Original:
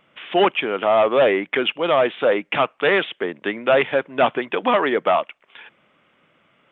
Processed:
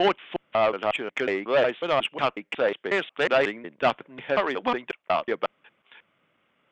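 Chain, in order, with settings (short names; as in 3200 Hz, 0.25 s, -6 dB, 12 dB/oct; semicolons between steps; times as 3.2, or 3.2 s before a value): slices in reverse order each 0.182 s, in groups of 3; added harmonics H 3 -17 dB, 5 -42 dB, 7 -38 dB, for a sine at -5 dBFS; gain -3 dB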